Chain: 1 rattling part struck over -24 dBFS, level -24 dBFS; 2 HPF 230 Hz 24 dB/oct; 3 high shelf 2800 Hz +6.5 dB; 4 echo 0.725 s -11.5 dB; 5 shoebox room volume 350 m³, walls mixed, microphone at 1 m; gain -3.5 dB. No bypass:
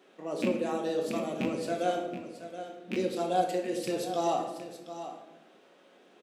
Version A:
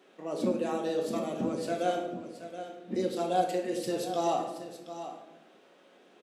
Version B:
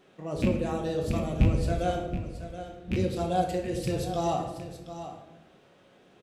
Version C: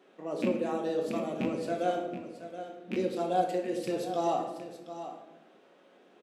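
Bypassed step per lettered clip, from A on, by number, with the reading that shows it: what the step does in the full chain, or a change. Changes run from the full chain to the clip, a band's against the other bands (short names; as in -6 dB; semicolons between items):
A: 1, 2 kHz band -2.5 dB; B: 2, 125 Hz band +15.5 dB; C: 3, 8 kHz band -5.5 dB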